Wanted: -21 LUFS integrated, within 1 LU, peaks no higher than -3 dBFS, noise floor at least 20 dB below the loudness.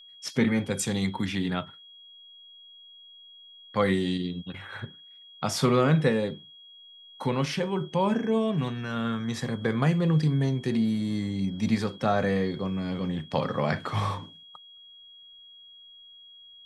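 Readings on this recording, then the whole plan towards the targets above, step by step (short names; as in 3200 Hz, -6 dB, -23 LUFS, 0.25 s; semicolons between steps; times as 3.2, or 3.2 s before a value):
steady tone 3300 Hz; tone level -48 dBFS; loudness -27.5 LUFS; peak -10.0 dBFS; loudness target -21.0 LUFS
-> notch 3300 Hz, Q 30; gain +6.5 dB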